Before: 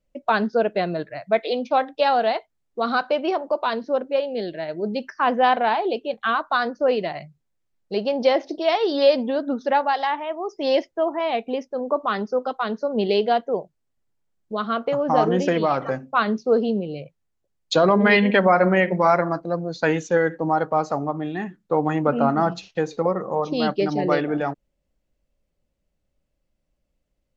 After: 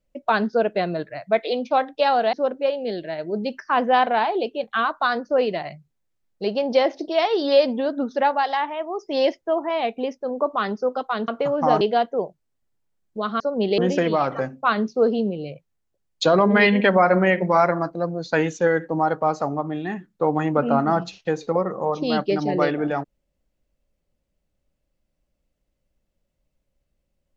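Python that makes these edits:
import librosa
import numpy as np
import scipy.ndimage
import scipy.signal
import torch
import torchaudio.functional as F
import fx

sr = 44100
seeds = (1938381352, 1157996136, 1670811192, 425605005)

y = fx.edit(x, sr, fx.cut(start_s=2.33, length_s=1.5),
    fx.swap(start_s=12.78, length_s=0.38, other_s=14.75, other_length_s=0.53), tone=tone)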